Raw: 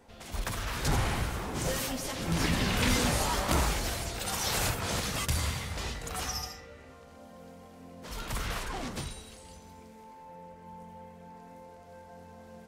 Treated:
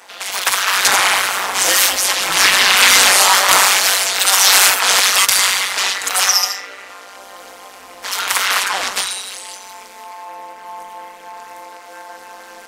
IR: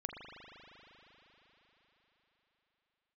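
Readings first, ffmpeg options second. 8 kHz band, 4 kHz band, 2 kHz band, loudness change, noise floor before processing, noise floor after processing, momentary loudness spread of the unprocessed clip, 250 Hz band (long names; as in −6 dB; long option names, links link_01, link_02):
+22.5 dB, +22.0 dB, +21.5 dB, +19.5 dB, −51 dBFS, −38 dBFS, 22 LU, −2.0 dB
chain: -af "highpass=1100,tremolo=f=190:d=0.857,apsyclip=28dB,volume=-1.5dB"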